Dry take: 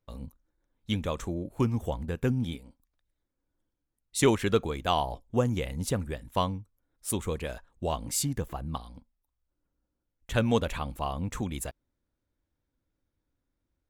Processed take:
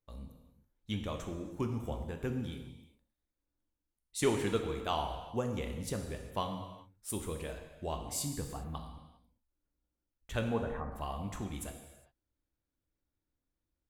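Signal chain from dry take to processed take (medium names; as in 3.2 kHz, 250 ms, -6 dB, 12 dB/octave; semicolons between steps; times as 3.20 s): 10.48–10.92 s: elliptic low-pass 1.9 kHz; reverberation, pre-delay 3 ms, DRR 4 dB; trim -8 dB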